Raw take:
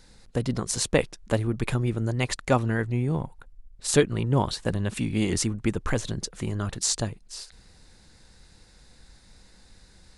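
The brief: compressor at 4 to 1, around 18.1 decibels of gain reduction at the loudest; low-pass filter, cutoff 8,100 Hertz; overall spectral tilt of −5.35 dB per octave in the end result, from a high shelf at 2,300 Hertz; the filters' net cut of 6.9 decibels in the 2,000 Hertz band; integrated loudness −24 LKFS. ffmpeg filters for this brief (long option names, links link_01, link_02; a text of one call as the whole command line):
ffmpeg -i in.wav -af "lowpass=8100,equalizer=frequency=2000:width_type=o:gain=-5,highshelf=frequency=2300:gain=-7.5,acompressor=threshold=-39dB:ratio=4,volume=18dB" out.wav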